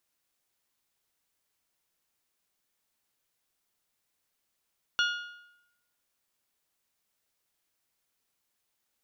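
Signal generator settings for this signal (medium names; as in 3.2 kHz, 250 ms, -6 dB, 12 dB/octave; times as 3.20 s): metal hit bell, lowest mode 1.43 kHz, decay 0.86 s, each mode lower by 4 dB, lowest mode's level -23 dB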